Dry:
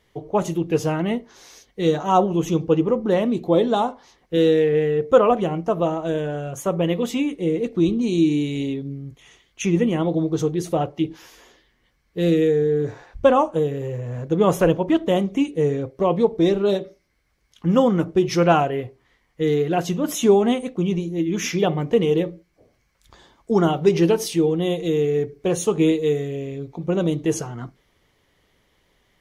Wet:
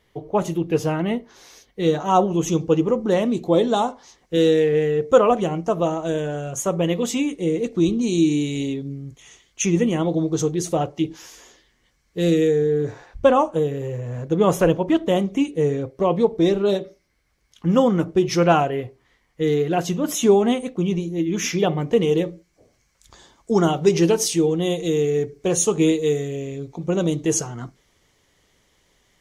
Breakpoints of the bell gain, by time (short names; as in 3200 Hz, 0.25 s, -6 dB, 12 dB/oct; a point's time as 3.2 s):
bell 7000 Hz 1 oct
1.83 s -1.5 dB
2.54 s +9.5 dB
12.42 s +9.5 dB
12.83 s +3 dB
21.8 s +3 dB
22.27 s +10 dB